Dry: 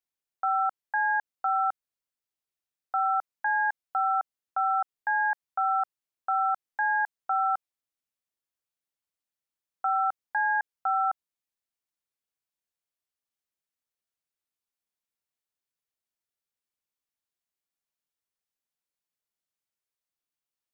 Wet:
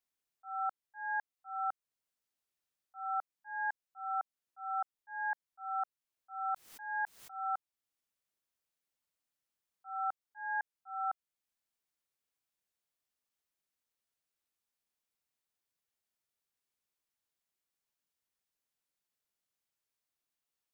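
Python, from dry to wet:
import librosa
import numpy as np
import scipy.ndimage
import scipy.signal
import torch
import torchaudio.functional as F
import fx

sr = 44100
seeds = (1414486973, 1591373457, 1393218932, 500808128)

y = fx.auto_swell(x, sr, attack_ms=651.0)
y = fx.pre_swell(y, sr, db_per_s=89.0, at=(6.5, 7.3), fade=0.02)
y = F.gain(torch.from_numpy(y), 1.0).numpy()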